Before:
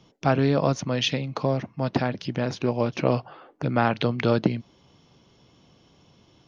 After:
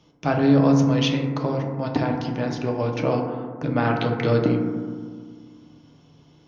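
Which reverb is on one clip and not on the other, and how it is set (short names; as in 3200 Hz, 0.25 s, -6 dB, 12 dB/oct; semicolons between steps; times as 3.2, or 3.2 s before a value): FDN reverb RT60 1.7 s, low-frequency decay 1.4×, high-frequency decay 0.25×, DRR 1 dB; gain -2 dB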